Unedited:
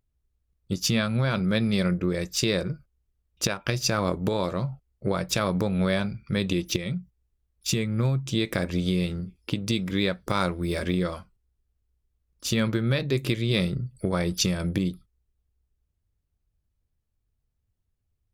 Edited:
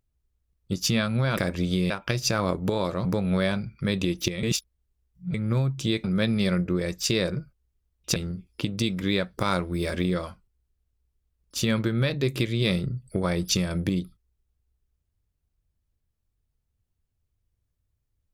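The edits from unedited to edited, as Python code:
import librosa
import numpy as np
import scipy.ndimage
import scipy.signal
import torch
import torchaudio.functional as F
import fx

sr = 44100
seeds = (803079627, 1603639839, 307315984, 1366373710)

y = fx.edit(x, sr, fx.swap(start_s=1.37, length_s=2.12, other_s=8.52, other_length_s=0.53),
    fx.cut(start_s=4.64, length_s=0.89),
    fx.reverse_span(start_s=6.91, length_s=0.91), tone=tone)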